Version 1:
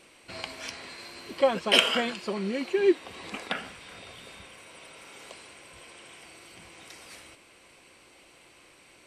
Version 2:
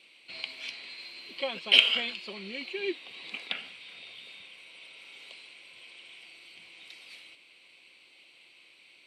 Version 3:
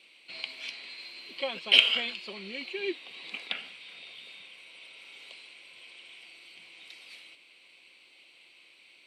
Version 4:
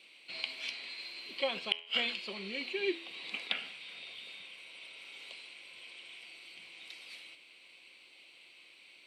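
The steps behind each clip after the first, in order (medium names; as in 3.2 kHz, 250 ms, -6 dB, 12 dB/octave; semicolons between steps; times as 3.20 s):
high-pass 150 Hz 12 dB/octave; high-order bell 3.1 kHz +14.5 dB 1.3 oct; trim -12 dB
high-pass 130 Hz 6 dB/octave
inverted gate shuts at -12 dBFS, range -35 dB; de-hum 83.65 Hz, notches 39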